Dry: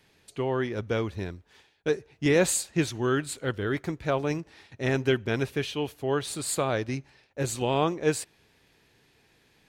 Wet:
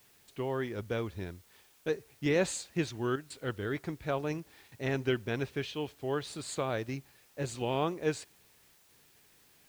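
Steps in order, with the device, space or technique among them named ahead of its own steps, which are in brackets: worn cassette (low-pass 6.5 kHz 12 dB/octave; wow and flutter; level dips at 3.16/8.75 s, 140 ms -9 dB; white noise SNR 29 dB); trim -6 dB

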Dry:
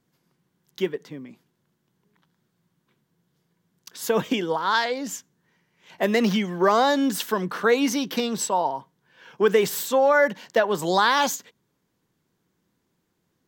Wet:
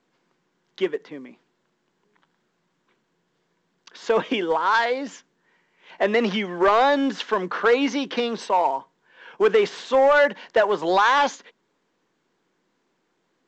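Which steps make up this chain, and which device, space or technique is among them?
telephone (band-pass 320–3100 Hz; saturation -14.5 dBFS, distortion -16 dB; trim +4.5 dB; µ-law 128 kbps 16 kHz)

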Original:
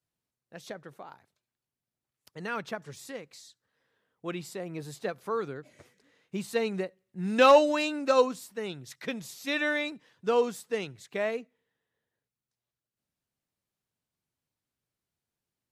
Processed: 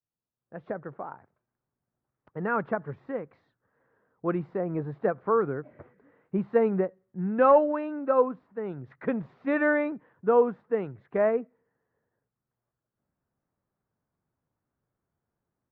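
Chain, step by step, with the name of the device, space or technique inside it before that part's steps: action camera in a waterproof case (low-pass 1.5 kHz 24 dB/octave; level rider gain up to 16.5 dB; trim -8.5 dB; AAC 64 kbps 48 kHz)

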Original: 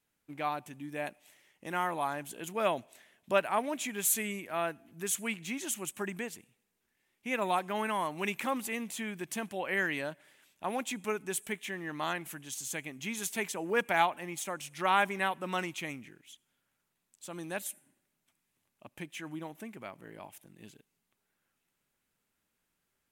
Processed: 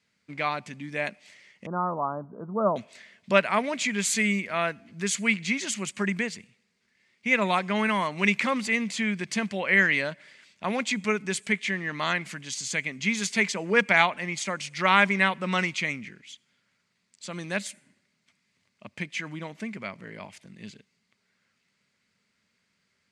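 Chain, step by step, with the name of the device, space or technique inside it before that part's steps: 1.66–2.76 s: steep low-pass 1.3 kHz 72 dB/octave; car door speaker (cabinet simulation 92–7500 Hz, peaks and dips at 93 Hz +5 dB, 200 Hz +7 dB, 320 Hz -7 dB, 800 Hz -7 dB, 2.1 kHz +8 dB, 4.6 kHz +9 dB); trim +7 dB

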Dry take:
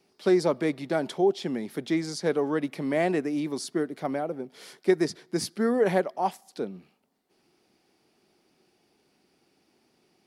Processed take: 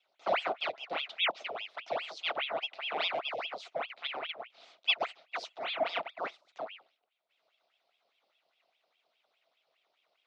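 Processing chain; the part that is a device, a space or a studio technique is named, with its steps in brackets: 5.59–6.15 s: high-pass 400 Hz; voice changer toy (ring modulator with a swept carrier 1.6 kHz, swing 90%, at 4.9 Hz; cabinet simulation 520–4600 Hz, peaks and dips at 670 Hz +9 dB, 990 Hz -4 dB, 1.7 kHz -9 dB, 3.7 kHz +4 dB); trim -5 dB

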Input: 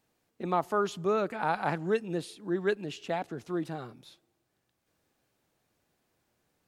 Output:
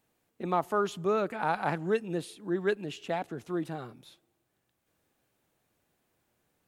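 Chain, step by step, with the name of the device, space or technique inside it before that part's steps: exciter from parts (in parallel at -8 dB: high-pass 3.2 kHz 6 dB/octave + saturation -36.5 dBFS, distortion -11 dB + high-pass 4 kHz 24 dB/octave)

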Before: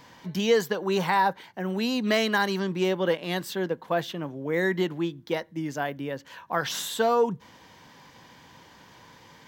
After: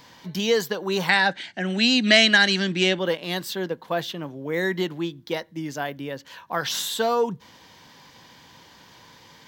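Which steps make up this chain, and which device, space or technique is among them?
presence and air boost (peaking EQ 4.2 kHz +5.5 dB 1.2 oct; treble shelf 11 kHz +6 dB); 1.09–2.99 s: FFT filter 110 Hz 0 dB, 310 Hz +7 dB, 440 Hz -4 dB, 670 Hz +6 dB, 1 kHz -8 dB, 1.6 kHz +9 dB, 2.9 kHz +10 dB, 5.6 kHz +5 dB, 8 kHz +9 dB, 14 kHz -24 dB

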